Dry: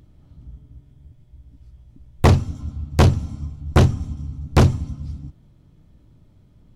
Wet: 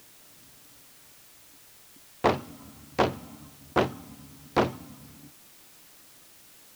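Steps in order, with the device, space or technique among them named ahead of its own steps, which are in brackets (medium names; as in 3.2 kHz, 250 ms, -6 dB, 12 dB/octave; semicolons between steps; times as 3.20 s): tape answering machine (band-pass 390–3000 Hz; saturation -11 dBFS, distortion -14 dB; wow and flutter; white noise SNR 20 dB)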